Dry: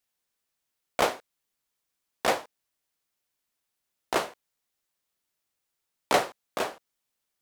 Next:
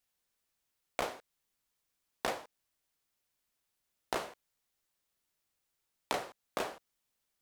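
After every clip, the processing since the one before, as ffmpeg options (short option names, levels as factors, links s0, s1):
-af "acompressor=threshold=0.0316:ratio=12,lowshelf=f=92:g=6.5,volume=0.891"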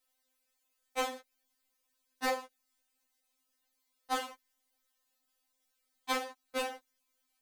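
-af "afftfilt=real='re*3.46*eq(mod(b,12),0)':imag='im*3.46*eq(mod(b,12),0)':win_size=2048:overlap=0.75,volume=1.88"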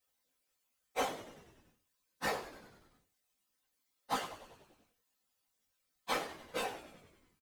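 -filter_complex "[0:a]afftfilt=real='hypot(re,im)*cos(2*PI*random(0))':imag='hypot(re,im)*sin(2*PI*random(1))':win_size=512:overlap=0.75,asplit=2[s0][s1];[s1]adelay=19,volume=0.447[s2];[s0][s2]amix=inputs=2:normalize=0,asplit=8[s3][s4][s5][s6][s7][s8][s9][s10];[s4]adelay=96,afreqshift=-81,volume=0.188[s11];[s5]adelay=192,afreqshift=-162,volume=0.119[s12];[s6]adelay=288,afreqshift=-243,volume=0.075[s13];[s7]adelay=384,afreqshift=-324,volume=0.0473[s14];[s8]adelay=480,afreqshift=-405,volume=0.0295[s15];[s9]adelay=576,afreqshift=-486,volume=0.0186[s16];[s10]adelay=672,afreqshift=-567,volume=0.0117[s17];[s3][s11][s12][s13][s14][s15][s16][s17]amix=inputs=8:normalize=0,volume=1.41"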